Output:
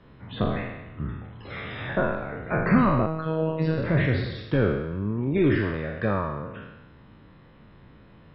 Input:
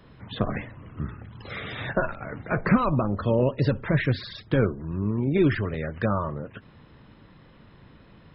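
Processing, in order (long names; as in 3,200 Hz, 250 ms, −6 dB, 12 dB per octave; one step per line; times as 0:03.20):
peak hold with a decay on every bin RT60 1.04 s
high-frequency loss of the air 160 metres
0:03.06–0:03.78: phases set to zero 159 Hz
level −2 dB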